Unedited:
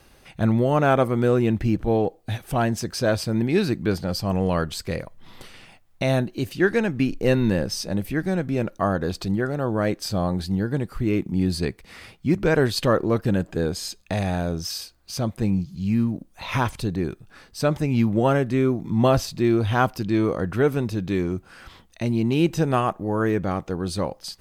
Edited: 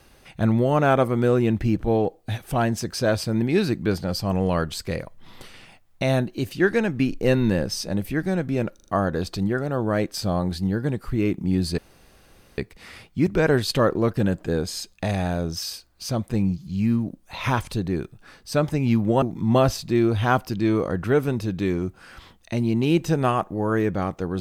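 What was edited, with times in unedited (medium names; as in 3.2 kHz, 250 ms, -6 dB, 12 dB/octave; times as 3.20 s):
8.75 s: stutter 0.04 s, 4 plays
11.66 s: insert room tone 0.80 s
18.30–18.71 s: delete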